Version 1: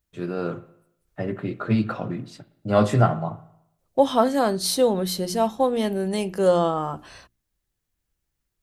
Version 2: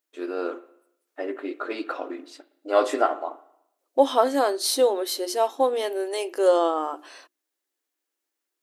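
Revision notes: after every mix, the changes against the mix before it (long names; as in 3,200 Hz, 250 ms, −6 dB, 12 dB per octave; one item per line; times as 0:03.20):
master: add linear-phase brick-wall high-pass 260 Hz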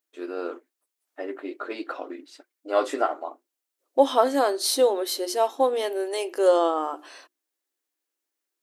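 reverb: off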